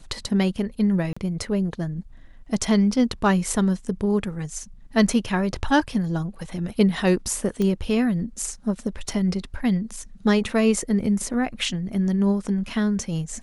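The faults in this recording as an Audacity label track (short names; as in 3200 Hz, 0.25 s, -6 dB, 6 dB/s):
1.130000	1.170000	gap 35 ms
7.620000	7.620000	pop -14 dBFS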